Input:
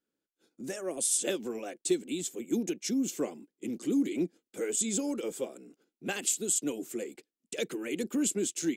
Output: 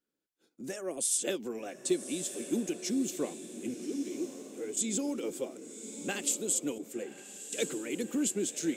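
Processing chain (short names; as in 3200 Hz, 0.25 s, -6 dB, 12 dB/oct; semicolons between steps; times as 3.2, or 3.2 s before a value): 3.74–4.77 ladder high-pass 280 Hz, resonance 45%; diffused feedback echo 1.145 s, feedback 42%, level -10 dB; 6.78–7.9 three-band expander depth 70%; gain -1.5 dB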